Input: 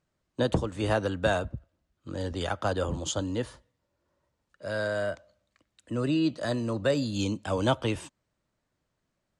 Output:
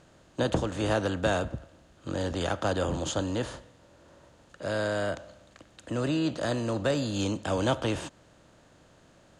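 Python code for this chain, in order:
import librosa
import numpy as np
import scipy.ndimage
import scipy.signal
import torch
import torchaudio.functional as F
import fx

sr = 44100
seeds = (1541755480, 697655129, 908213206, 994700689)

y = fx.bin_compress(x, sr, power=0.6)
y = y * 10.0 ** (-3.5 / 20.0)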